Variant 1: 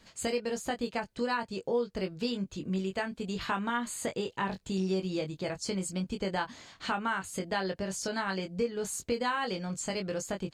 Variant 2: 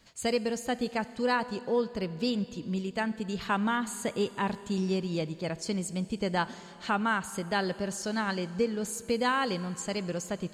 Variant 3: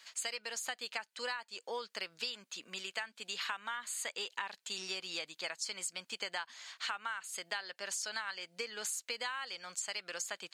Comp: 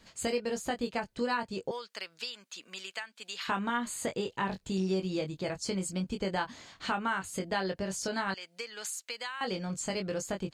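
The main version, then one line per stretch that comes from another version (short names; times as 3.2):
1
1.71–3.48 from 3
8.34–9.41 from 3
not used: 2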